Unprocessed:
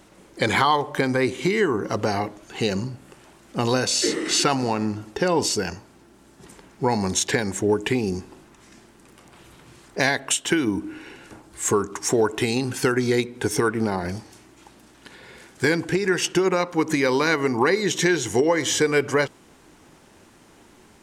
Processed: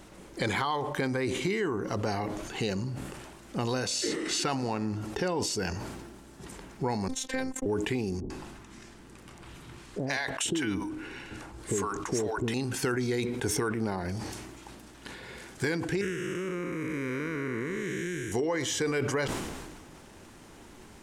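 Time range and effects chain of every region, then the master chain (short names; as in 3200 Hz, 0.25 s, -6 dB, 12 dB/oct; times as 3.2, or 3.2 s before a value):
7.08–7.66 gate -28 dBFS, range -36 dB + bell 6200 Hz -4 dB 2.3 oct + robotiser 261 Hz
8.2–12.54 high shelf 11000 Hz -7 dB + bands offset in time lows, highs 0.1 s, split 570 Hz
16.01–18.32 time blur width 0.402 s + fixed phaser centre 1900 Hz, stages 4
whole clip: compressor 2:1, threshold -36 dBFS; low shelf 78 Hz +8 dB; sustainer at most 34 dB/s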